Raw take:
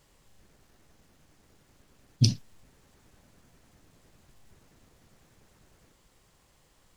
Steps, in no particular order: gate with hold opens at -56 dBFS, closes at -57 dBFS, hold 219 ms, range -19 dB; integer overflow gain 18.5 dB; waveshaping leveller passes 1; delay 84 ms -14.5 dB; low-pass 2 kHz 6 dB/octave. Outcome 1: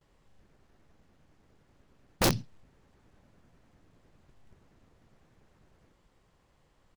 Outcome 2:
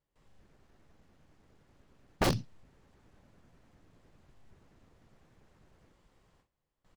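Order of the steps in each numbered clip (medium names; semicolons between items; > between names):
gate with hold > low-pass > waveshaping leveller > delay > integer overflow; waveshaping leveller > delay > integer overflow > low-pass > gate with hold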